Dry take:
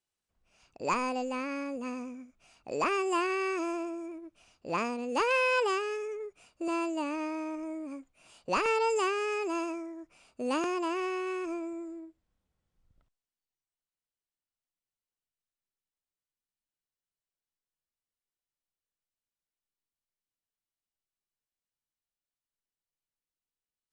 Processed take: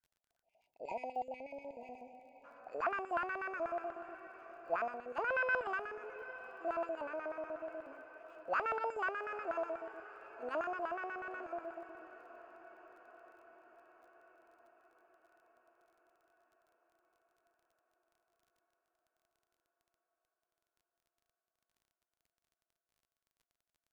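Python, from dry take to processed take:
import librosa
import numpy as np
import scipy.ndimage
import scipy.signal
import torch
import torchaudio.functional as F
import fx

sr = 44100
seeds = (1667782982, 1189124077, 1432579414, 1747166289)

y = fx.filter_lfo_bandpass(x, sr, shape='square', hz=8.2, low_hz=670.0, high_hz=1500.0, q=7.9)
y = fx.echo_diffused(y, sr, ms=900, feedback_pct=60, wet_db=-15.0)
y = fx.spec_erase(y, sr, start_s=0.42, length_s=2.02, low_hz=970.0, high_hz=2000.0)
y = fx.dmg_crackle(y, sr, seeds[0], per_s=25.0, level_db=-67.0)
y = fx.low_shelf(y, sr, hz=120.0, db=7.0)
y = y * 10.0 ** (6.0 / 20.0)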